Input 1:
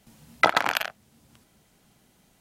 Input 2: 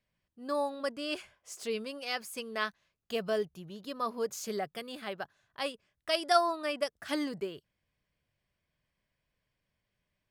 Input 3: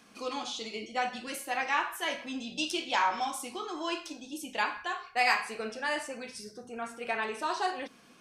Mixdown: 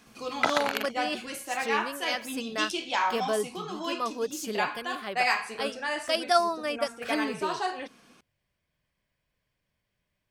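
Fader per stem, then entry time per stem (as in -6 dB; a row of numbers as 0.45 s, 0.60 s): -6.0 dB, +2.5 dB, +0.5 dB; 0.00 s, 0.00 s, 0.00 s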